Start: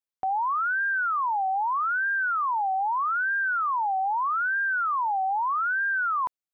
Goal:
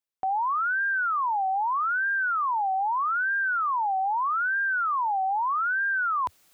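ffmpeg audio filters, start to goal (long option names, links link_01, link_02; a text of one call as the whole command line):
ffmpeg -i in.wav -af "equalizer=frequency=88:width=2.6:gain=-6.5,areverse,acompressor=mode=upward:threshold=-37dB:ratio=2.5,areverse" out.wav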